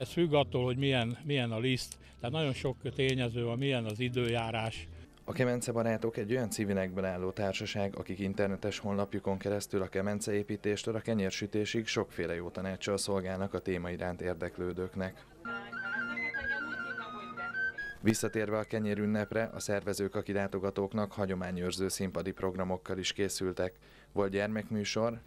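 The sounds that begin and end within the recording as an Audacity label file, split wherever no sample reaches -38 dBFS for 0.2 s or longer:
2.240000	4.840000	sound
5.280000	15.100000	sound
15.450000	23.680000	sound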